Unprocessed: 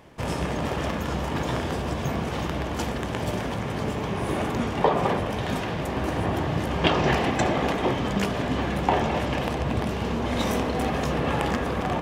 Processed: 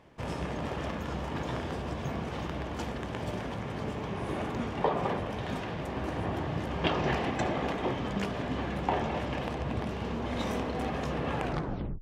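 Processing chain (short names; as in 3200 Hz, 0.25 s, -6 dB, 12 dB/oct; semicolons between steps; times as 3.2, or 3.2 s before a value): tape stop at the end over 0.64 s; high shelf 8300 Hz -11 dB; gain -7 dB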